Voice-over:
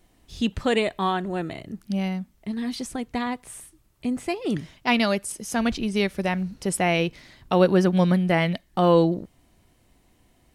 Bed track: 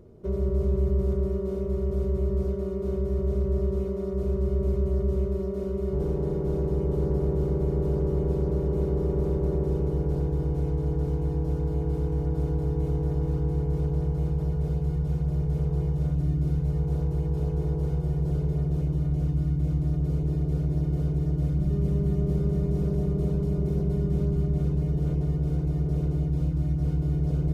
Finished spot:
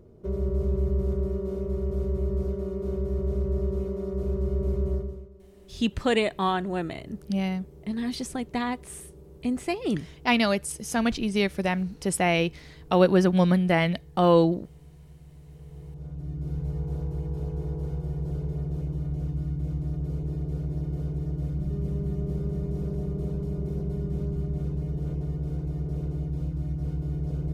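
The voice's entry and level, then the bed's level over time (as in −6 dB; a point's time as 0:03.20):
5.40 s, −1.0 dB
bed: 0:04.94 −1.5 dB
0:05.33 −23 dB
0:15.38 −23 dB
0:16.61 −4.5 dB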